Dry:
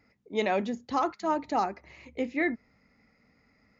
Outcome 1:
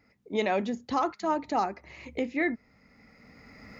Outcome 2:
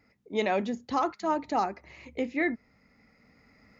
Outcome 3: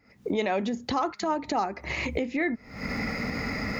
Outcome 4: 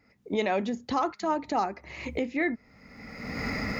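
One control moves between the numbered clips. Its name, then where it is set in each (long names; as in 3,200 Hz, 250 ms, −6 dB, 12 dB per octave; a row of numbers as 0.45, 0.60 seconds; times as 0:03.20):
camcorder AGC, rising by: 14, 5.1, 91, 36 dB per second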